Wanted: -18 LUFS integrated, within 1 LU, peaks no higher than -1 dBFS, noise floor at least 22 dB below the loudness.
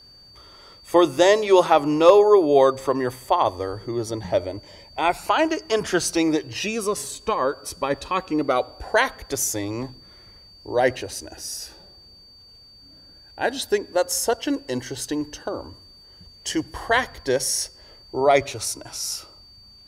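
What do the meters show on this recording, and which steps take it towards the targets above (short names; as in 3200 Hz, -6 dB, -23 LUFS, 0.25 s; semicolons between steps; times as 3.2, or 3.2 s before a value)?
steady tone 4600 Hz; tone level -47 dBFS; loudness -22.0 LUFS; peak -2.5 dBFS; loudness target -18.0 LUFS
-> notch 4600 Hz, Q 30; gain +4 dB; limiter -1 dBFS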